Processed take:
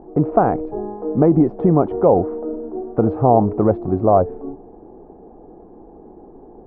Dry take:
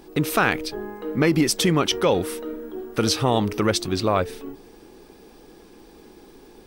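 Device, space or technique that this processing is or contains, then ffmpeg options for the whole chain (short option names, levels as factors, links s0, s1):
under water: -af "lowpass=f=900:w=0.5412,lowpass=f=900:w=1.3066,equalizer=f=710:t=o:w=0.35:g=8,volume=1.88"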